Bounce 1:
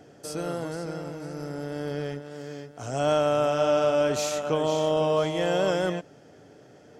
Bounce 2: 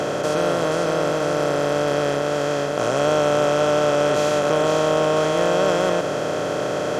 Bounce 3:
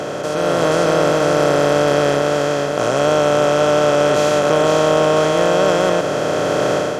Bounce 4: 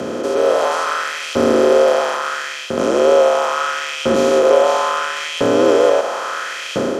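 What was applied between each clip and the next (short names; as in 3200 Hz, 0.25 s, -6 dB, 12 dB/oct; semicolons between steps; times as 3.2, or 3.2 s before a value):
per-bin compression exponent 0.2; tone controls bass -1 dB, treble -6 dB
AGC; gain -1 dB
LFO high-pass saw up 0.74 Hz 230–2900 Hz; frequency shift -58 Hz; gain -2 dB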